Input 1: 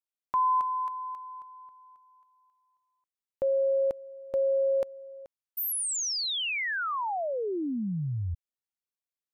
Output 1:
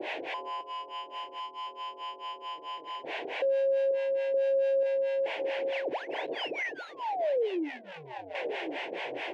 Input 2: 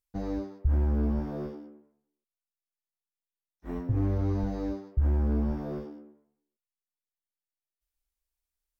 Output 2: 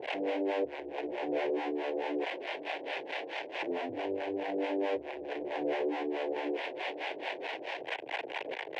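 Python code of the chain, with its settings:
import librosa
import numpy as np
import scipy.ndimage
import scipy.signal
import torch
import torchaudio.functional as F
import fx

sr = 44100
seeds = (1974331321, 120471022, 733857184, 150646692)

p1 = fx.delta_mod(x, sr, bps=16000, step_db=-30.5)
p2 = fx.doubler(p1, sr, ms=31.0, db=-13.0)
p3 = p2 + 10.0 ** (-15.0 / 20.0) * np.pad(p2, (int(1055 * sr / 1000.0), 0))[:len(p2)]
p4 = fx.power_curve(p3, sr, exponent=0.5)
p5 = fx.harmonic_tremolo(p4, sr, hz=4.6, depth_pct=100, crossover_hz=590.0)
p6 = scipy.signal.sosfilt(scipy.signal.butter(2, 1900.0, 'lowpass', fs=sr, output='sos'), p5)
p7 = fx.peak_eq(p6, sr, hz=1200.0, db=-2.5, octaves=0.77)
p8 = fx.over_compress(p7, sr, threshold_db=-33.0, ratio=-1.0)
p9 = p7 + (p8 * librosa.db_to_amplitude(-3.0))
p10 = scipy.signal.sosfilt(scipy.signal.butter(4, 260.0, 'highpass', fs=sr, output='sos'), p9)
y = fx.fixed_phaser(p10, sr, hz=520.0, stages=4)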